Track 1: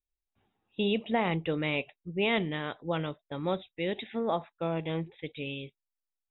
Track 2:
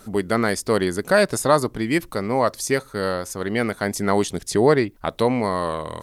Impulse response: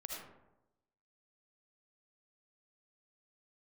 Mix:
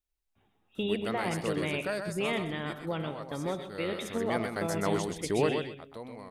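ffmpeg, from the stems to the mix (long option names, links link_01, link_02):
-filter_complex "[0:a]acompressor=threshold=-37dB:ratio=2,volume=0.5dB,asplit=3[link_01][link_02][link_03];[link_02]volume=-4.5dB[link_04];[link_03]volume=-11dB[link_05];[1:a]adelay=750,volume=-2.5dB,afade=type=out:start_time=1.64:duration=0.7:silence=0.375837,afade=type=in:start_time=3.53:duration=0.75:silence=0.237137,afade=type=out:start_time=5.4:duration=0.25:silence=0.223872,asplit=2[link_06][link_07];[link_07]volume=-5.5dB[link_08];[2:a]atrim=start_sample=2205[link_09];[link_04][link_09]afir=irnorm=-1:irlink=0[link_10];[link_05][link_08]amix=inputs=2:normalize=0,aecho=0:1:127|254|381:1|0.18|0.0324[link_11];[link_01][link_06][link_10][link_11]amix=inputs=4:normalize=0"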